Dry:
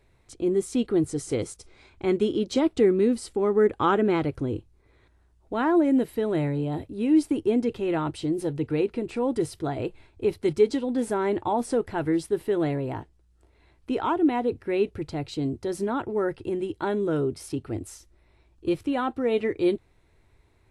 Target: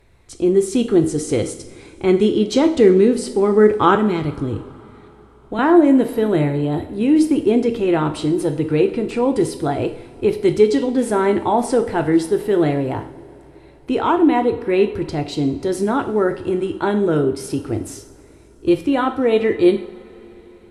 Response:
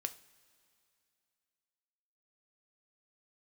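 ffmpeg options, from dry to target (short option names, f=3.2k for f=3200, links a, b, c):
-filter_complex "[0:a]asettb=1/sr,asplit=3[a][b][c];[a]atrim=end=3.954[d];[b]atrim=start=3.95:end=5.59,asetpts=PTS-STARTPTS,afade=t=in:d=0.004:c=qsin,afade=t=out:st=1.636:d=0.004:c=qsin,acrossover=split=240|3000[e][f][g];[f]acompressor=threshold=-36dB:ratio=2.5[h];[e][h][g]amix=inputs=3:normalize=0[i];[c]atrim=start=5.586[j];[d][i]acrossfade=d=0.004:c1=hsin:c2=qsin[k];[k][j]acrossfade=d=0.004:c1=qsin:c2=hsin[l];[1:a]atrim=start_sample=2205,asetrate=28224,aresample=44100[m];[l][m]afir=irnorm=-1:irlink=0,volume=7dB"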